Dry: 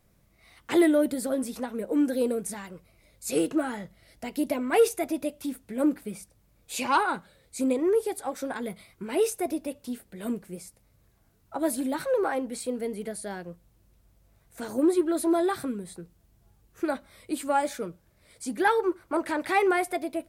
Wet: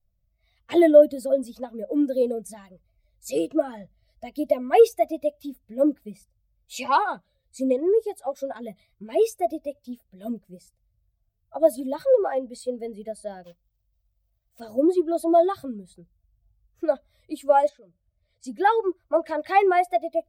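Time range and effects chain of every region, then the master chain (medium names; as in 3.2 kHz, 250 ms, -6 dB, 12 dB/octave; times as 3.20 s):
13.44–14.61 s: block-companded coder 3-bit + bass shelf 280 Hz -5 dB
17.69–18.44 s: distance through air 79 m + compression 2:1, threshold -49 dBFS
whole clip: expander on every frequency bin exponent 1.5; fifteen-band graphic EQ 160 Hz -6 dB, 630 Hz +12 dB, 1.6 kHz -3 dB, 10 kHz -9 dB; trim +2.5 dB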